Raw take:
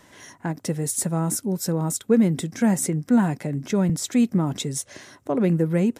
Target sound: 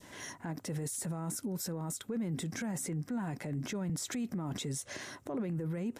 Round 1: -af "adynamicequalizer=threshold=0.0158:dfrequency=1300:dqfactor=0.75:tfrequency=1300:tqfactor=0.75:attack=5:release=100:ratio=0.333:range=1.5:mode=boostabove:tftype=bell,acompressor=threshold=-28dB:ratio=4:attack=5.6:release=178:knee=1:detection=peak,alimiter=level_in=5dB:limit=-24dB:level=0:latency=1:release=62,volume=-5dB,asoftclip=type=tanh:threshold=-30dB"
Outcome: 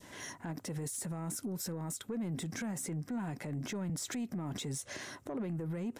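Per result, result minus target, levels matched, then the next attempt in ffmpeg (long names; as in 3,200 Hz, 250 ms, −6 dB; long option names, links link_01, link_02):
downward compressor: peak gain reduction +14 dB; soft clipping: distortion +16 dB
-af "adynamicequalizer=threshold=0.0158:dfrequency=1300:dqfactor=0.75:tfrequency=1300:tqfactor=0.75:attack=5:release=100:ratio=0.333:range=1.5:mode=boostabove:tftype=bell,alimiter=level_in=5dB:limit=-24dB:level=0:latency=1:release=62,volume=-5dB,asoftclip=type=tanh:threshold=-30dB"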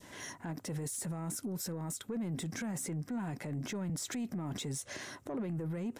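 soft clipping: distortion +16 dB
-af "adynamicequalizer=threshold=0.0158:dfrequency=1300:dqfactor=0.75:tfrequency=1300:tqfactor=0.75:attack=5:release=100:ratio=0.333:range=1.5:mode=boostabove:tftype=bell,alimiter=level_in=5dB:limit=-24dB:level=0:latency=1:release=62,volume=-5dB,asoftclip=type=tanh:threshold=-21dB"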